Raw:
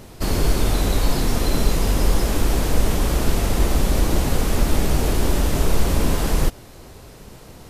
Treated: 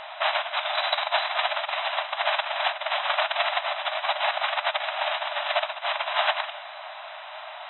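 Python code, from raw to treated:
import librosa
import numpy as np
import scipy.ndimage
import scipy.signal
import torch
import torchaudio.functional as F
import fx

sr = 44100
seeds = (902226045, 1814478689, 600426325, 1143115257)

y = fx.dynamic_eq(x, sr, hz=3000.0, q=0.72, threshold_db=-40.0, ratio=4.0, max_db=3)
y = fx.over_compress(y, sr, threshold_db=-22.0, ratio=-1.0)
y = fx.brickwall_bandpass(y, sr, low_hz=580.0, high_hz=4000.0)
y = y * librosa.db_to_amplitude(6.5)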